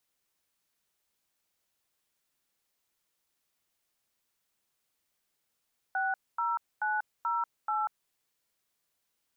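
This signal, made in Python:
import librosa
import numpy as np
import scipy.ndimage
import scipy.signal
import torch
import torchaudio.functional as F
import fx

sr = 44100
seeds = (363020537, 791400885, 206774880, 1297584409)

y = fx.dtmf(sr, digits='60908', tone_ms=190, gap_ms=243, level_db=-30.0)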